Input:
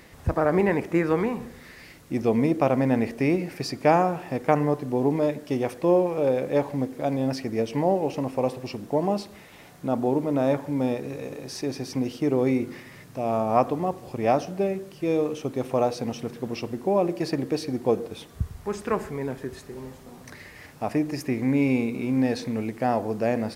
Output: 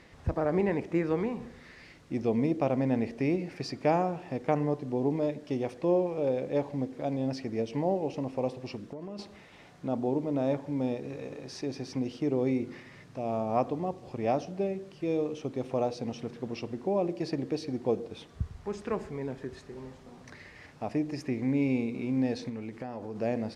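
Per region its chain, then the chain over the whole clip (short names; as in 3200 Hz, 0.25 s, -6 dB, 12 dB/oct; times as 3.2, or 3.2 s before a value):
8.78–9.19 bell 790 Hz -11.5 dB 0.44 oct + compressor 12:1, threshold -31 dBFS
22.49–23.16 notch 690 Hz, Q 8.6 + compressor 3:1, threshold -30 dBFS
whole clip: LPF 6000 Hz 12 dB/oct; dynamic EQ 1400 Hz, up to -6 dB, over -40 dBFS, Q 0.98; gain -5 dB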